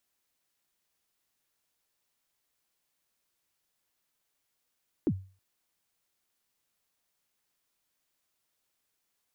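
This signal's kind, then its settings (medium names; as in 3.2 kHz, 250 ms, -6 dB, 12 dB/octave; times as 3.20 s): kick drum length 0.32 s, from 380 Hz, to 95 Hz, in 58 ms, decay 0.37 s, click off, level -20 dB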